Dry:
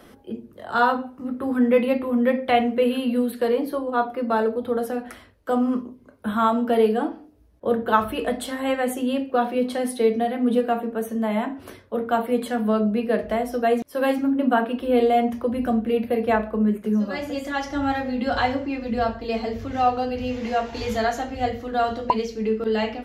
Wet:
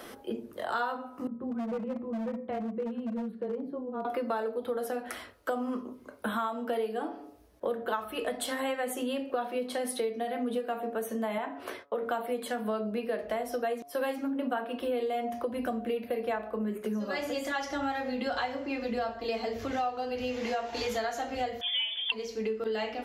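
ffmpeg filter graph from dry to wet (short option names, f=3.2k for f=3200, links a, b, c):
-filter_complex "[0:a]asettb=1/sr,asplit=3[a][b][c];[a]atrim=end=1.274[d];[b]atrim=start=1.27:end=4.05,asetpts=PTS-STARTPTS,afade=t=in:d=0.004:c=qsin,afade=t=out:st=2.776:d=0.004:c=qsin,bandpass=f=150:t=q:w=1.7,afreqshift=-16,asoftclip=type=hard:threshold=-26dB[e];[c]atrim=start=4.046[f];[d][e]acrossfade=d=0.004:c1=hsin:c2=qsin[g];[g][f]acrossfade=d=0.004:c1=qsin:c2=hsin,asettb=1/sr,asplit=3[h][i][j];[h]atrim=end=11.384[k];[i]atrim=start=11.38:end=12.03,asetpts=PTS-STARTPTS,afade=t=in:d=0.004:c=qsin,afade=t=out:st=0.646:d=0.004:c=qsin,agate=range=-19dB:threshold=-53dB:ratio=16:release=100:detection=peak,bass=f=250:g=-10,treble=f=4k:g=-9[l];[j]atrim=start=12.026[m];[k][l]acrossfade=d=0.004:c1=hsin:c2=qsin[n];[n][m]acrossfade=d=0.004:c1=qsin:c2=hsin,asettb=1/sr,asplit=3[o][p][q];[o]atrim=end=21.614[r];[p]atrim=start=21.61:end=22.12,asetpts=PTS-STARTPTS,afade=t=in:d=0.004:c=qsin,afade=t=out:st=0.506:d=0.004:c=qsin,highpass=130,lowpass=f=3.1k:t=q:w=0.5098,lowpass=f=3.1k:t=q:w=0.6013,lowpass=f=3.1k:t=q:w=0.9,lowpass=f=3.1k:t=q:w=2.563,afreqshift=-3700[s];[q]atrim=start=22.116[t];[r][s]acrossfade=d=0.004:c1=hsin:c2=qsin[u];[u][t]acrossfade=d=0.004:c1=qsin:c2=hsin,bass=f=250:g=-12,treble=f=4k:g=2,bandreject=f=141.6:t=h:w=4,bandreject=f=283.2:t=h:w=4,bandreject=f=424.8:t=h:w=4,bandreject=f=566.4:t=h:w=4,bandreject=f=708:t=h:w=4,bandreject=f=849.6:t=h:w=4,bandreject=f=991.2:t=h:w=4,bandreject=f=1.1328k:t=h:w=4,bandreject=f=1.2744k:t=h:w=4,bandreject=f=1.416k:t=h:w=4,acompressor=threshold=-35dB:ratio=6,volume=5dB"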